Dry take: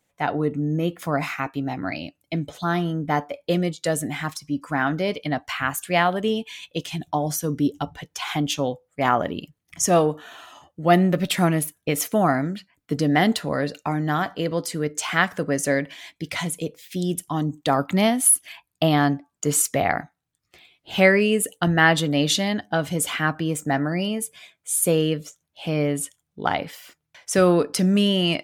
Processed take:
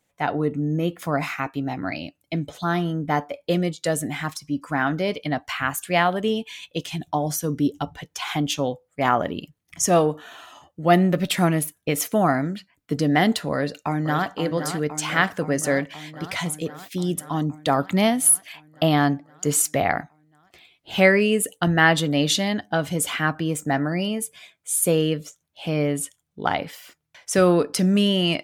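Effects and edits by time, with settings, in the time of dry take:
0:13.53–0:14.28: delay throw 520 ms, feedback 75%, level −9 dB

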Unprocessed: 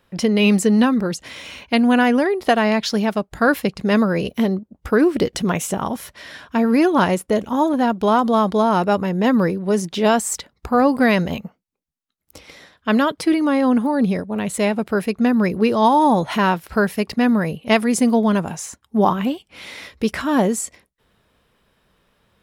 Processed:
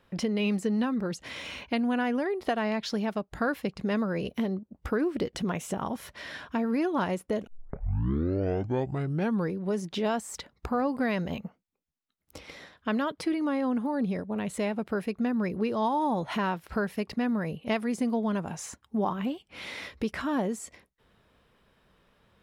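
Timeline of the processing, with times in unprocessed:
0:07.47: tape start 2.07 s
whole clip: de-essing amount 40%; high-shelf EQ 5,500 Hz −7.5 dB; downward compressor 2 to 1, threshold −31 dBFS; level −2 dB

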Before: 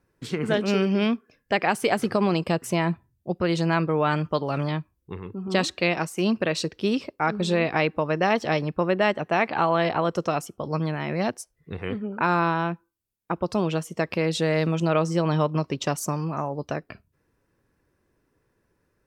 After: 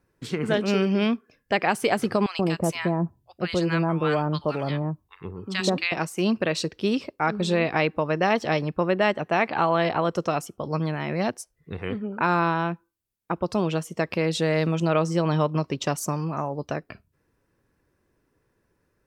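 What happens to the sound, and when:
0:02.26–0:05.92: multiband delay without the direct sound highs, lows 130 ms, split 1,100 Hz

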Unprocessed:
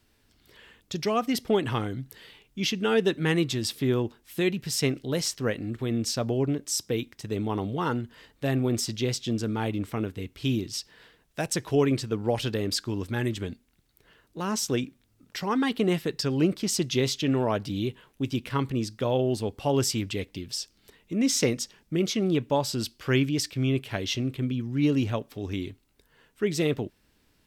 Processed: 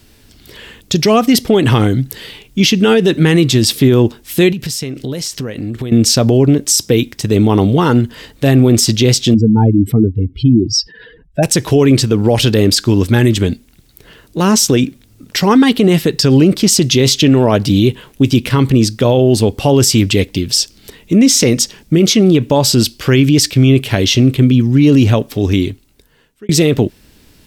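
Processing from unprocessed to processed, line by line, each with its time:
0:04.52–0:05.92: downward compressor 16 to 1, threshold −37 dBFS
0:09.34–0:11.43: expanding power law on the bin magnitudes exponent 2.6
0:25.48–0:26.49: fade out
whole clip: parametric band 1,200 Hz −5.5 dB 2.2 octaves; boost into a limiter +21.5 dB; level −1 dB

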